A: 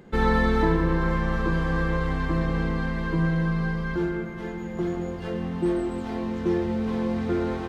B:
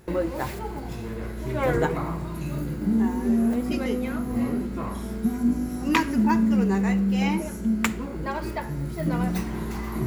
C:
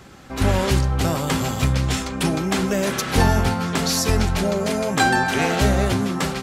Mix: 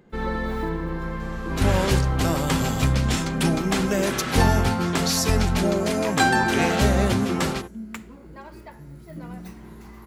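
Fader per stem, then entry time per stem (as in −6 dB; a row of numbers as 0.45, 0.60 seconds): −6.0, −12.0, −1.5 decibels; 0.00, 0.10, 1.20 seconds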